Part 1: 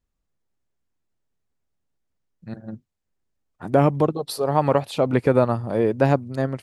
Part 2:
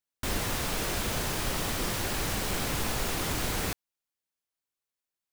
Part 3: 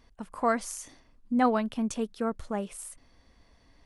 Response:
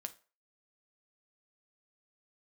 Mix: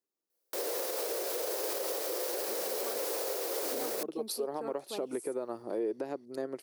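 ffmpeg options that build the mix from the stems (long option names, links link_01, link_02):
-filter_complex "[0:a]acompressor=threshold=-21dB:ratio=6,volume=-11dB[link_01];[1:a]highpass=frequency=510:width_type=q:width=4.9,adelay=300,volume=-1.5dB[link_02];[2:a]adelay=2400,volume=-12.5dB[link_03];[link_01][link_02][link_03]amix=inputs=3:normalize=0,aexciter=amount=2.2:drive=5.5:freq=4300,highpass=frequency=360:width_type=q:width=3.4,alimiter=level_in=1dB:limit=-24dB:level=0:latency=1:release=198,volume=-1dB"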